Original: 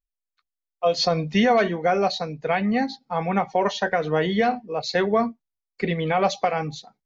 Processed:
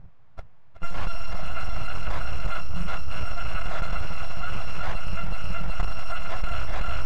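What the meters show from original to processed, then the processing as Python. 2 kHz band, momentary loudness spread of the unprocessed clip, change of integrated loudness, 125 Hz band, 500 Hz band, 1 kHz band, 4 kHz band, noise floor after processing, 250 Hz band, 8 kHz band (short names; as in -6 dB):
-7.5 dB, 8 LU, -11.0 dB, -2.5 dB, -19.0 dB, -11.5 dB, -10.5 dB, -42 dBFS, -17.5 dB, n/a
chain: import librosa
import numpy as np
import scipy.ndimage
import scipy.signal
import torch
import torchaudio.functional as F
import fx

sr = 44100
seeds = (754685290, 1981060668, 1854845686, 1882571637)

y = fx.bit_reversed(x, sr, seeds[0], block=256)
y = fx.hpss(y, sr, part='harmonic', gain_db=3)
y = fx.peak_eq(y, sr, hz=110.0, db=13.5, octaves=2.2)
y = fx.echo_feedback(y, sr, ms=373, feedback_pct=34, wet_db=-9.5)
y = np.abs(y)
y = scipy.signal.sosfilt(scipy.signal.butter(2, 1100.0, 'lowpass', fs=sr, output='sos'), y)
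y = fx.peak_eq(y, sr, hz=300.0, db=-12.0, octaves=1.3)
y = fx.env_flatten(y, sr, amount_pct=100)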